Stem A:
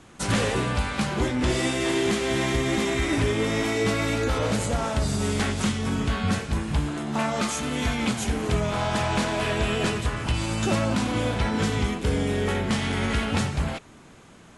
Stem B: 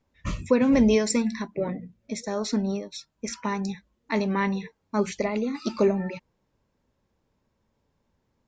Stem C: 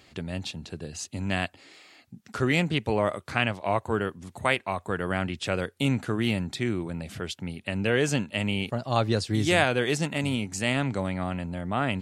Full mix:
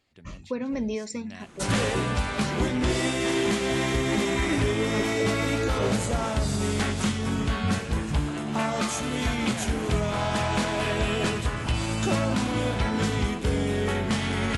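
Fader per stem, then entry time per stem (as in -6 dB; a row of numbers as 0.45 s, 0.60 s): -1.0 dB, -10.0 dB, -17.0 dB; 1.40 s, 0.00 s, 0.00 s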